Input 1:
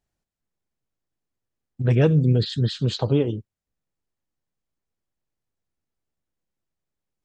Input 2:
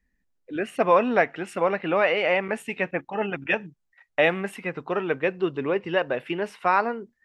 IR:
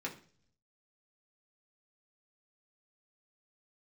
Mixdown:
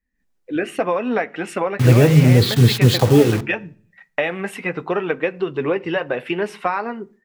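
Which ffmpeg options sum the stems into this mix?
-filter_complex "[0:a]equalizer=f=81:t=o:w=0.45:g=4.5,alimiter=limit=-11.5dB:level=0:latency=1:release=190,acrusher=bits=5:mix=0:aa=0.000001,volume=-3.5dB,asplit=2[a][b];[b]volume=-9dB[c];[1:a]acompressor=threshold=-24dB:ratio=12,flanger=delay=3.5:depth=3.3:regen=-57:speed=0.76:shape=triangular,volume=-4.5dB,asplit=2[d][e];[e]volume=-14.5dB[f];[2:a]atrim=start_sample=2205[g];[c][f]amix=inputs=2:normalize=0[h];[h][g]afir=irnorm=-1:irlink=0[i];[a][d][i]amix=inputs=3:normalize=0,dynaudnorm=f=130:g=3:m=15dB"

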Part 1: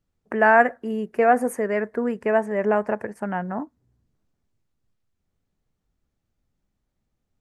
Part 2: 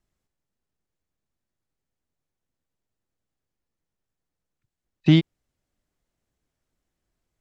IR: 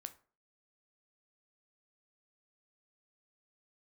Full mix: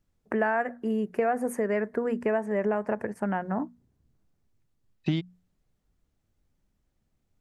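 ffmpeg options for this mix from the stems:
-filter_complex "[0:a]lowshelf=f=320:g=4.5,volume=-1.5dB[a];[1:a]volume=-4.5dB[b];[a][b]amix=inputs=2:normalize=0,bandreject=f=60:t=h:w=6,bandreject=f=120:t=h:w=6,bandreject=f=180:t=h:w=6,bandreject=f=240:t=h:w=6,acompressor=threshold=-23dB:ratio=6"

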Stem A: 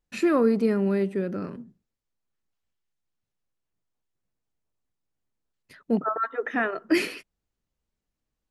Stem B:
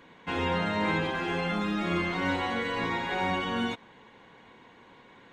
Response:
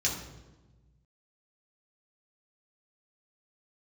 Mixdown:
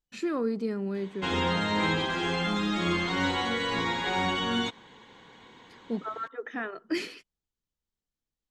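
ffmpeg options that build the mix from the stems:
-filter_complex "[0:a]highshelf=f=6.5k:g=-7.5,volume=-8dB[a];[1:a]adelay=950,volume=1dB[b];[a][b]amix=inputs=2:normalize=0,superequalizer=8b=0.708:13b=2:14b=2:15b=2.24"

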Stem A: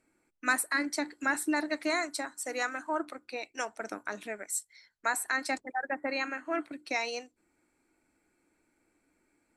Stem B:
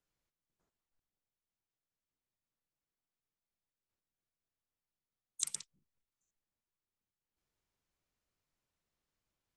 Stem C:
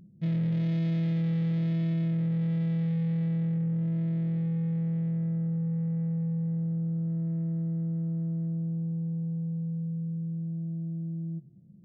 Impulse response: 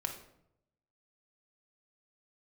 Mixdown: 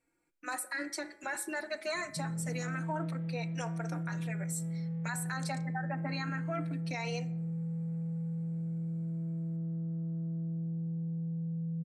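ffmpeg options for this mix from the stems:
-filter_complex "[0:a]dynaudnorm=f=100:g=9:m=3.5dB,bandreject=f=105.8:t=h:w=4,bandreject=f=211.6:t=h:w=4,bandreject=f=317.4:t=h:w=4,bandreject=f=423.2:t=h:w=4,bandreject=f=529:t=h:w=4,bandreject=f=634.8:t=h:w=4,bandreject=f=740.6:t=h:w=4,bandreject=f=846.4:t=h:w=4,bandreject=f=952.2:t=h:w=4,bandreject=f=1.058k:t=h:w=4,bandreject=f=1.1638k:t=h:w=4,bandreject=f=1.2696k:t=h:w=4,bandreject=f=1.3754k:t=h:w=4,bandreject=f=1.4812k:t=h:w=4,bandreject=f=1.587k:t=h:w=4,bandreject=f=1.6928k:t=h:w=4,bandreject=f=1.7986k:t=h:w=4,bandreject=f=1.9044k:t=h:w=4,bandreject=f=2.0102k:t=h:w=4,bandreject=f=2.116k:t=h:w=4,bandreject=f=2.2218k:t=h:w=4,bandreject=f=2.3276k:t=h:w=4,bandreject=f=2.4334k:t=h:w=4,asplit=2[a][b];[b]adelay=3.8,afreqshift=0.27[c];[a][c]amix=inputs=2:normalize=1,volume=-4.5dB,asplit=3[d][e][f];[e]volume=-14dB[g];[1:a]volume=-8.5dB[h];[2:a]alimiter=level_in=6dB:limit=-24dB:level=0:latency=1,volume=-6dB,lowpass=1.4k,adelay=1950,volume=-2dB[i];[f]apad=whole_len=421835[j];[h][j]sidechaincompress=threshold=-40dB:ratio=8:attack=16:release=569[k];[3:a]atrim=start_sample=2205[l];[g][l]afir=irnorm=-1:irlink=0[m];[d][k][i][m]amix=inputs=4:normalize=0,alimiter=level_in=2.5dB:limit=-24dB:level=0:latency=1:release=37,volume=-2.5dB"

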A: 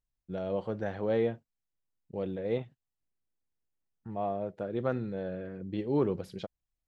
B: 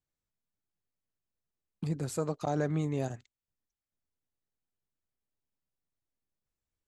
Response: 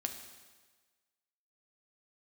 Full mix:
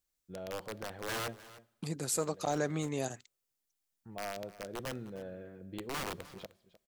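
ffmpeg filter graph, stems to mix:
-filter_complex "[0:a]equalizer=f=170:t=o:w=1.7:g=-2.5,aeval=exprs='(mod(17.8*val(0)+1,2)-1)/17.8':c=same,volume=-8dB,asplit=3[a][b][c];[b]volume=-17dB[d];[c]volume=-16.5dB[e];[1:a]highpass=f=280:p=1,highshelf=f=3.4k:g=11,volume=0dB,asplit=2[f][g];[g]apad=whole_len=303034[h];[a][h]sidechaincompress=threshold=-43dB:ratio=8:attack=16:release=764[i];[2:a]atrim=start_sample=2205[j];[d][j]afir=irnorm=-1:irlink=0[k];[e]aecho=0:1:306:1[l];[i][f][k][l]amix=inputs=4:normalize=0"

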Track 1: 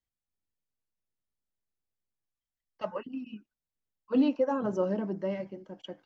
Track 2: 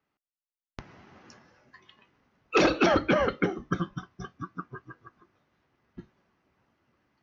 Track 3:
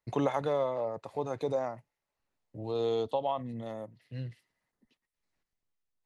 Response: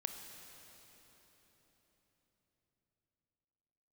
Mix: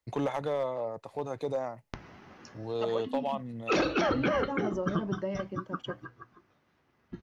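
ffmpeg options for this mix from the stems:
-filter_complex "[0:a]acompressor=threshold=-33dB:ratio=6,volume=3dB[a];[1:a]bandreject=f=60:t=h:w=6,bandreject=f=120:t=h:w=6,adelay=1150,volume=1.5dB[b];[2:a]asoftclip=type=hard:threshold=-22.5dB,volume=-1dB[c];[a][b][c]amix=inputs=3:normalize=0,alimiter=limit=-19dB:level=0:latency=1:release=82"

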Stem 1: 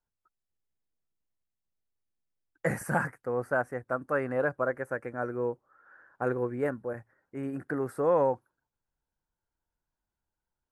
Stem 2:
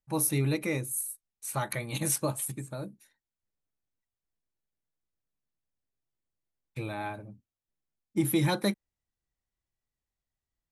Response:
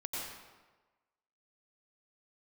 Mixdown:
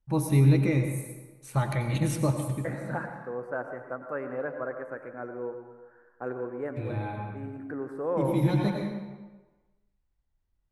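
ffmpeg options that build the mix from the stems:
-filter_complex "[0:a]highpass=250,volume=-9dB,asplit=3[a][b][c];[b]volume=-4.5dB[d];[1:a]volume=-2.5dB,asplit=2[e][f];[f]volume=-3.5dB[g];[c]apad=whole_len=472536[h];[e][h]sidechaincompress=threshold=-50dB:ratio=8:attack=16:release=656[i];[2:a]atrim=start_sample=2205[j];[d][g]amix=inputs=2:normalize=0[k];[k][j]afir=irnorm=-1:irlink=0[l];[a][i][l]amix=inputs=3:normalize=0,aemphasis=mode=reproduction:type=bsi"

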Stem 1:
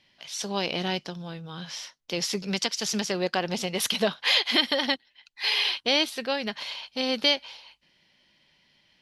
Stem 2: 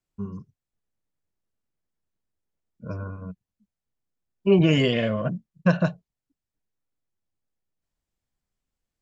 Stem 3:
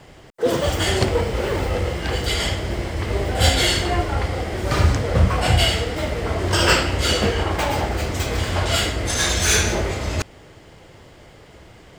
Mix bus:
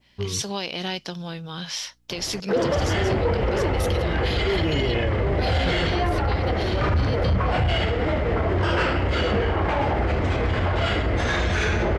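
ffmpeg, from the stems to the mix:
-filter_complex "[0:a]acompressor=threshold=-29dB:ratio=6,aeval=exprs='val(0)+0.000316*(sin(2*PI*60*n/s)+sin(2*PI*2*60*n/s)/2+sin(2*PI*3*60*n/s)/3+sin(2*PI*4*60*n/s)/4+sin(2*PI*5*60*n/s)/5)':c=same,adynamicequalizer=threshold=0.00708:dfrequency=1600:dqfactor=0.7:tfrequency=1600:tqfactor=0.7:attack=5:release=100:ratio=0.375:range=1.5:mode=boostabove:tftype=highshelf,volume=-2.5dB[a];[1:a]aecho=1:1:2.4:0.82,acompressor=threshold=-19dB:ratio=6,volume=-0.5dB[b];[2:a]lowpass=2.2k,adelay=2100,volume=2.5dB[c];[a][b][c]amix=inputs=3:normalize=0,acontrast=76,alimiter=limit=-15dB:level=0:latency=1:release=141"

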